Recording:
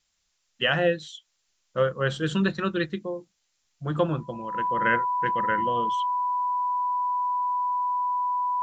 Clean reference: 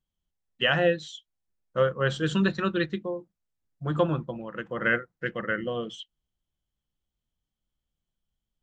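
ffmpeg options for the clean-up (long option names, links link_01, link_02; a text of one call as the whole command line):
ffmpeg -i in.wav -af "bandreject=frequency=990:width=30,agate=range=-21dB:threshold=-66dB" out.wav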